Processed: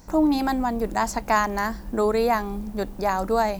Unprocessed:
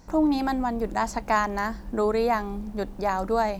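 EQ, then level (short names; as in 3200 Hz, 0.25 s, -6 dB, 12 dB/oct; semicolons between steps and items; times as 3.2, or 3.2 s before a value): high shelf 8800 Hz +10.5 dB; +2.0 dB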